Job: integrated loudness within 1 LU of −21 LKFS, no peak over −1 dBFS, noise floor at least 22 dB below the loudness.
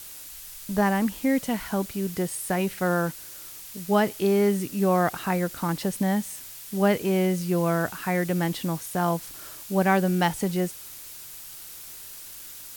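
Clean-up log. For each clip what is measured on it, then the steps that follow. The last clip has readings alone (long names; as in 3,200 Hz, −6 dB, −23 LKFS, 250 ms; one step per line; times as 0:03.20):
background noise floor −42 dBFS; target noise floor −48 dBFS; integrated loudness −25.5 LKFS; sample peak −8.0 dBFS; target loudness −21.0 LKFS
→ noise reduction from a noise print 6 dB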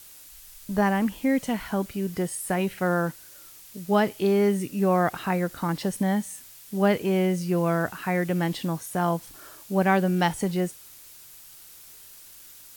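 background noise floor −48 dBFS; integrated loudness −25.5 LKFS; sample peak −8.0 dBFS; target loudness −21.0 LKFS
→ level +4.5 dB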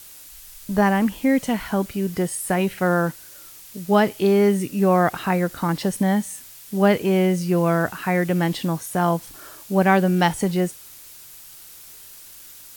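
integrated loudness −21.0 LKFS; sample peak −3.5 dBFS; background noise floor −43 dBFS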